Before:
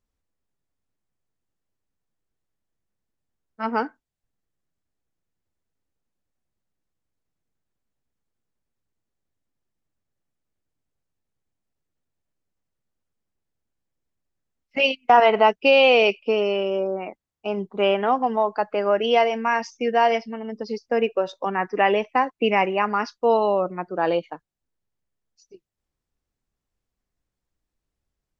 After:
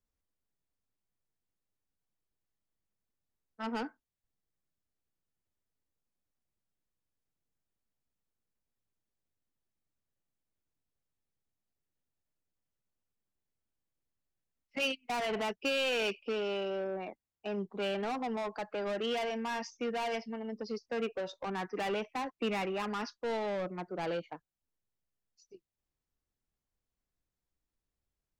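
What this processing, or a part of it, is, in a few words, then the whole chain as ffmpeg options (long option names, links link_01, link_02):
one-band saturation: -filter_complex "[0:a]acrossover=split=250|3200[link_01][link_02][link_03];[link_02]asoftclip=type=tanh:threshold=-26.5dB[link_04];[link_01][link_04][link_03]amix=inputs=3:normalize=0,volume=-7dB"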